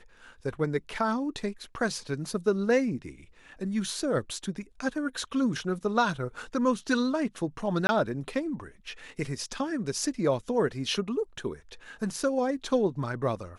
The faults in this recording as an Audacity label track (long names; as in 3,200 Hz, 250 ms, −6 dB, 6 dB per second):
7.870000	7.890000	drop-out 20 ms